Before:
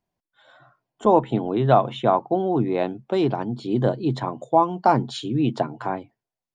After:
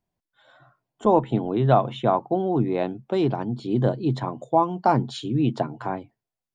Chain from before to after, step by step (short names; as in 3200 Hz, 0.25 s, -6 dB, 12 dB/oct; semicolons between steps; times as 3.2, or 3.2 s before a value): low shelf 190 Hz +5.5 dB; gain -2.5 dB